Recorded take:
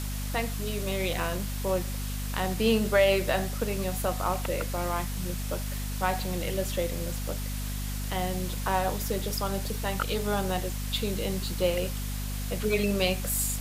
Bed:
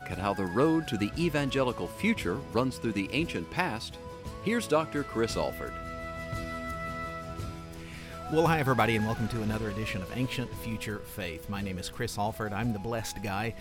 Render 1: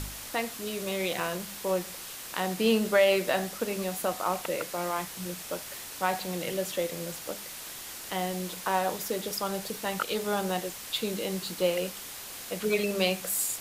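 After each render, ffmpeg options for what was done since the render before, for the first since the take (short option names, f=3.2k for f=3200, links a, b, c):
-af "bandreject=f=50:t=h:w=4,bandreject=f=100:t=h:w=4,bandreject=f=150:t=h:w=4,bandreject=f=200:t=h:w=4,bandreject=f=250:t=h:w=4"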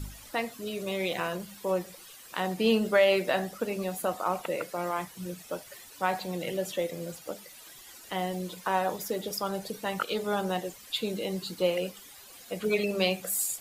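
-af "afftdn=nr=13:nf=-42"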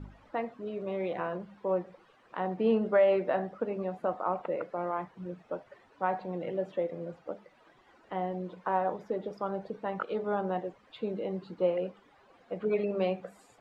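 -af "lowpass=1.2k,lowshelf=f=130:g=-9"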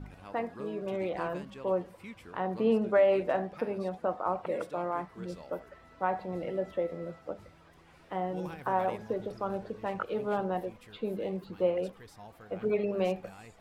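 -filter_complex "[1:a]volume=-19dB[a];[0:a][a]amix=inputs=2:normalize=0"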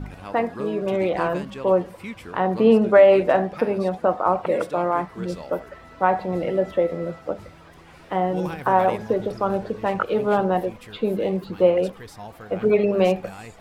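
-af "volume=11dB"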